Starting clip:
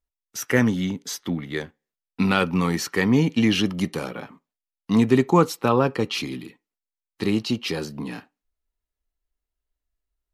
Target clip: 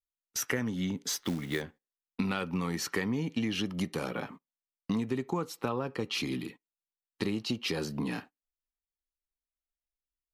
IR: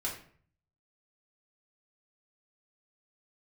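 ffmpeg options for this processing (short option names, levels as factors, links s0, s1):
-filter_complex "[0:a]agate=range=0.141:threshold=0.00501:ratio=16:detection=peak,acompressor=threshold=0.0398:ratio=10,asplit=3[s0][s1][s2];[s0]afade=t=out:st=1.09:d=0.02[s3];[s1]acrusher=bits=4:mode=log:mix=0:aa=0.000001,afade=t=in:st=1.09:d=0.02,afade=t=out:st=1.6:d=0.02[s4];[s2]afade=t=in:st=1.6:d=0.02[s5];[s3][s4][s5]amix=inputs=3:normalize=0"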